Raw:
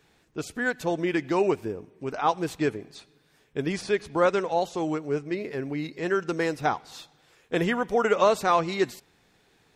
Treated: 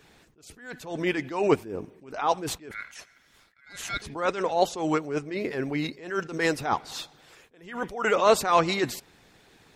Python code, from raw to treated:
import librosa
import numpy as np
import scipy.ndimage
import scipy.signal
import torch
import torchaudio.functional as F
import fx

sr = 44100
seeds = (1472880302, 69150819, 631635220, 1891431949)

y = fx.ring_mod(x, sr, carrier_hz=1800.0, at=(2.71, 4.02))
y = fx.hpss(y, sr, part='percussive', gain_db=7)
y = fx.attack_slew(y, sr, db_per_s=110.0)
y = F.gain(torch.from_numpy(y), 2.0).numpy()